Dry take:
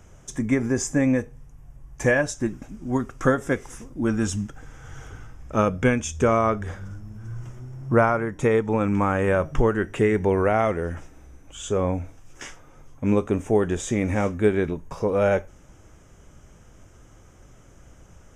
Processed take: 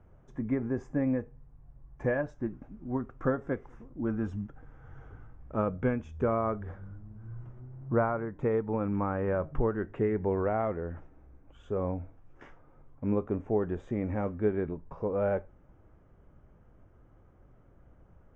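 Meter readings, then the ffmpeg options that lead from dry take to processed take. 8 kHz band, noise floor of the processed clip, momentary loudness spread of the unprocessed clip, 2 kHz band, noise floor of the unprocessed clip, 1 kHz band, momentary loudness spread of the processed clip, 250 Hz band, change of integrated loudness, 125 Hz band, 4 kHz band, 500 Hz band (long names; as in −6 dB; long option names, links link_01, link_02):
below −35 dB, −59 dBFS, 18 LU, −14.0 dB, −51 dBFS, −9.5 dB, 16 LU, −8.0 dB, −8.5 dB, −8.0 dB, below −25 dB, −8.0 dB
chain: -af "lowpass=1300,volume=-8dB"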